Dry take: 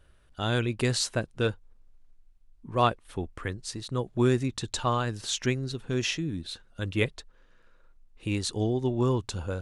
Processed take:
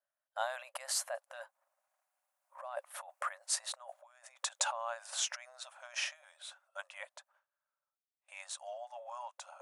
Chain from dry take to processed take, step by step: Doppler pass-by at 3.51, 19 m/s, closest 19 m; bell 3800 Hz -14 dB 2 oct; gate with hold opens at -58 dBFS; negative-ratio compressor -40 dBFS, ratio -1; brick-wall FIR high-pass 540 Hz; gain +7.5 dB

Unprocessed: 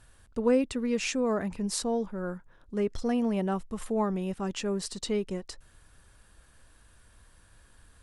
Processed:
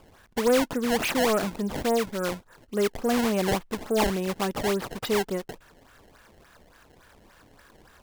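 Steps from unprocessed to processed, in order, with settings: overdrive pedal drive 18 dB, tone 2100 Hz, clips at -13 dBFS; decimation with a swept rate 21×, swing 160% 3.5 Hz

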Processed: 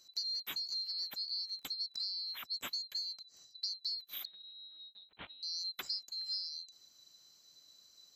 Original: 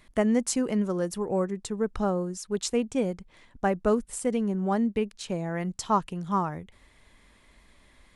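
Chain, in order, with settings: band-swap scrambler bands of 4000 Hz; 1.15–2.47 crackle 25/s -44 dBFS; compressor 6:1, threshold -31 dBFS, peak gain reduction 12.5 dB; 4.25–5.43 LPC vocoder at 8 kHz pitch kept; HPF 130 Hz 6 dB/oct; gain -5.5 dB

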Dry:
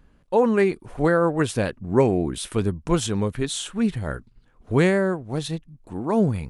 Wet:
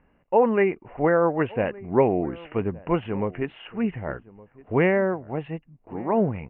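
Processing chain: rippled Chebyshev low-pass 2900 Hz, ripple 6 dB; low shelf 80 Hz -10 dB; outdoor echo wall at 200 m, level -21 dB; gain +3 dB

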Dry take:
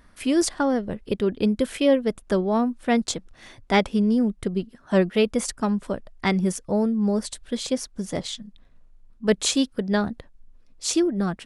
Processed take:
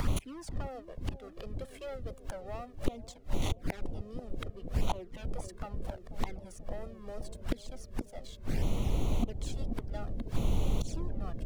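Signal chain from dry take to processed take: HPF 260 Hz 24 dB/oct; bell 850 Hz +7.5 dB 0.97 oct; sample leveller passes 2; upward compressor, threshold -30 dBFS; sample leveller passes 2; added noise brown -25 dBFS; flipped gate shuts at -13 dBFS, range -33 dB; overloaded stage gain 17 dB; envelope flanger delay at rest 2.2 ms, full sweep at -24 dBFS; on a send: analogue delay 0.487 s, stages 2048, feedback 75%, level -10 dB; on the sum: three-band squash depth 40%

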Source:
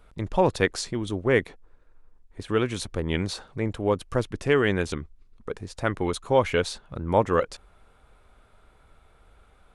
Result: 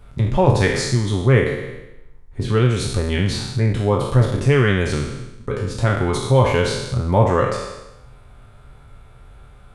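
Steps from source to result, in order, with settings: spectral trails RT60 0.89 s; bell 130 Hz +14.5 dB 0.65 oct; notch comb 160 Hz; in parallel at -1 dB: compressor, threshold -29 dBFS, peak gain reduction 16 dB; on the sum: low shelf 69 Hz +5.5 dB; gain +1 dB

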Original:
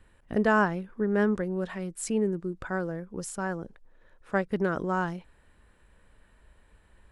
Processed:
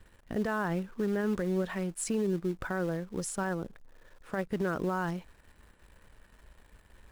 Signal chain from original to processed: in parallel at -9 dB: companded quantiser 4-bit; on the sum: limiter -21.5 dBFS, peak gain reduction 12 dB; gain -1.5 dB

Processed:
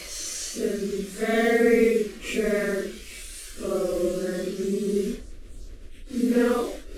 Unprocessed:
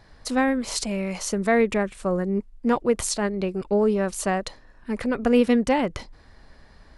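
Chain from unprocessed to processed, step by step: delta modulation 64 kbps, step -33 dBFS; de-esser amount 65%; Paulstretch 4.2×, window 0.05 s, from 1.18; fixed phaser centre 360 Hz, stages 4; gain +1 dB

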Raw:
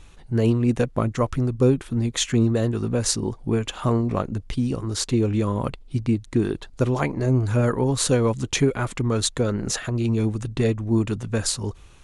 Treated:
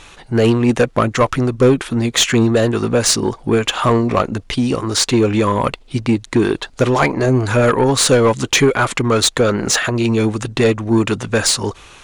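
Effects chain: overdrive pedal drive 17 dB, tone 5400 Hz, clips at -7.5 dBFS; gain +5 dB

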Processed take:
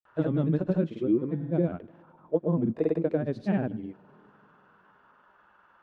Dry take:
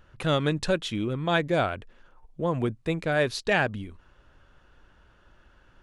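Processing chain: auto-wah 210–1100 Hz, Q 2.4, down, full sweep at -21.5 dBFS; two-slope reverb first 0.4 s, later 4.1 s, from -19 dB, DRR 16 dB; grains, pitch spread up and down by 0 st; gain +9 dB

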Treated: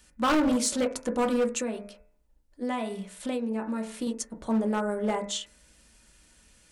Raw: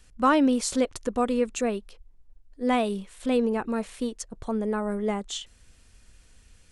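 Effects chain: HPF 68 Hz 6 dB/oct; bell 100 Hz -14 dB 0.54 oct; de-hum 87.1 Hz, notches 30; reverb RT60 0.30 s, pre-delay 3 ms, DRR 4 dB; 1.61–4.07 compressor 6:1, threshold -28 dBFS, peak gain reduction 10 dB; hard clip -20.5 dBFS, distortion -8 dB; high shelf 7600 Hz +6 dB; Doppler distortion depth 0.13 ms

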